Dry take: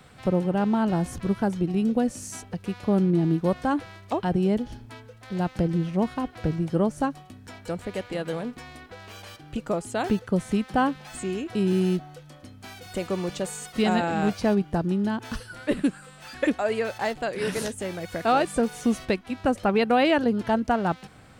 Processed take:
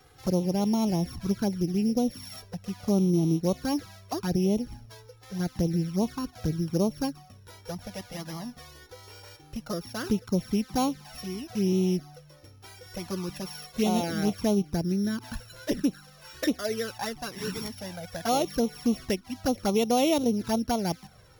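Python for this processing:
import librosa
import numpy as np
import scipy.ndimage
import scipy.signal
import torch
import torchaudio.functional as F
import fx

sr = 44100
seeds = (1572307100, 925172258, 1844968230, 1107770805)

y = np.r_[np.sort(x[:len(x) // 8 * 8].reshape(-1, 8), axis=1).ravel(), x[len(x) // 8 * 8:]]
y = fx.env_flanger(y, sr, rest_ms=2.6, full_db=-18.5)
y = y * 10.0 ** (-1.5 / 20.0)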